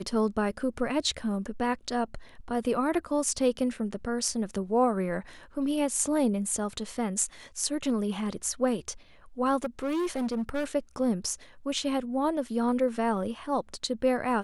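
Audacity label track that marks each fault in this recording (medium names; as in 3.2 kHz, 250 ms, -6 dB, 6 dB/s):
9.640000	10.650000	clipped -26 dBFS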